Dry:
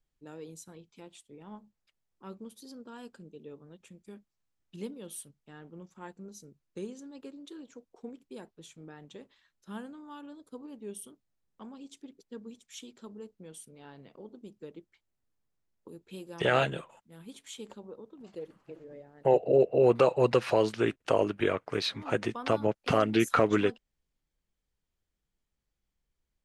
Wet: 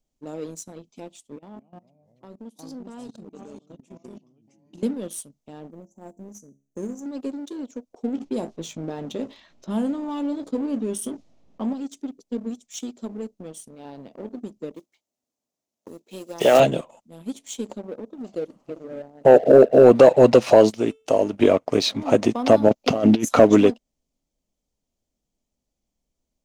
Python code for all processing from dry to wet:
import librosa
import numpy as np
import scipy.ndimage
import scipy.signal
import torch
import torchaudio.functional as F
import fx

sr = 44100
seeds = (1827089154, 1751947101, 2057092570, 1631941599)

y = fx.chain(x, sr, fx.highpass(hz=140.0, slope=24),
    fx.echo_pitch(ms=191, semitones=-3, count=3, db_per_echo=-6.0),
    fx.level_steps(step_db=17), at=(1.36, 4.83))
y = fx.chain(y, sr, fx.block_float(bits=7),
    fx.ellip_bandstop(low_hz=760.0, high_hz=6100.0, order=3, stop_db=40),
    fx.comb_fb(f0_hz=69.0, decay_s=0.37, harmonics='all', damping=0.0, mix_pct=50), at=(5.71, 7.06))
y = fx.chain(y, sr, fx.env_lowpass(base_hz=2600.0, full_db=-38.5),
    fx.doubler(ms=18.0, db=-11),
    fx.env_flatten(amount_pct=50), at=(8.13, 11.73))
y = fx.chain(y, sr, fx.block_float(bits=5),
    fx.highpass(hz=410.0, slope=6), at=(14.74, 16.6))
y = fx.chain(y, sr, fx.high_shelf(hz=10000.0, db=10.5),
    fx.comb_fb(f0_hz=440.0, decay_s=0.4, harmonics='all', damping=0.0, mix_pct=60), at=(20.7, 21.33))
y = fx.chain(y, sr, fx.over_compress(threshold_db=-30.0, ratio=-0.5),
    fx.peak_eq(hz=8800.0, db=-12.5, octaves=0.31), at=(22.69, 23.25))
y = fx.graphic_eq_15(y, sr, hz=(250, 630, 1600, 6300), db=(11, 10, -9, 8))
y = fx.leveller(y, sr, passes=1)
y = y * librosa.db_to_amplitude(3.0)